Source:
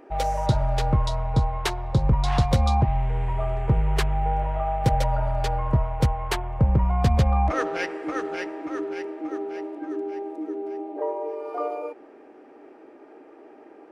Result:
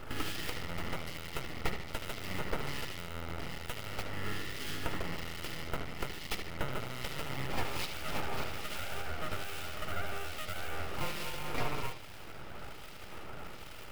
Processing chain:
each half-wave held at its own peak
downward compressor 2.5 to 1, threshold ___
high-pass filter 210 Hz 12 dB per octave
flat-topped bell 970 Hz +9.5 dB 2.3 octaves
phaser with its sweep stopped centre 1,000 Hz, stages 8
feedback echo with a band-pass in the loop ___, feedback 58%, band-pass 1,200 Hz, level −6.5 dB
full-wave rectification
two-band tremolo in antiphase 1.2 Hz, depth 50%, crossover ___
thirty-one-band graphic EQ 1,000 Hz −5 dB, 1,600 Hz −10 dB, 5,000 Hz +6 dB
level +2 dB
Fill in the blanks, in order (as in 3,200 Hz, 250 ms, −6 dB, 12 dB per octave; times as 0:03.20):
−37 dBFS, 75 ms, 2,200 Hz